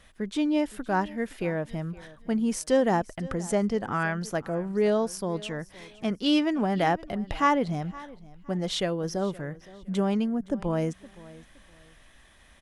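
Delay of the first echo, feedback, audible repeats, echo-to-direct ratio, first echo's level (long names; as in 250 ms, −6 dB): 517 ms, 27%, 2, −19.5 dB, −20.0 dB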